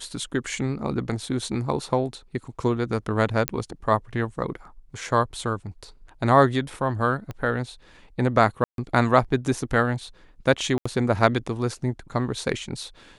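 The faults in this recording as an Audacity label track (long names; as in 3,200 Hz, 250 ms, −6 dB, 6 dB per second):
3.480000	3.480000	click −5 dBFS
7.310000	7.310000	click −21 dBFS
8.640000	8.780000	drop-out 142 ms
10.780000	10.860000	drop-out 75 ms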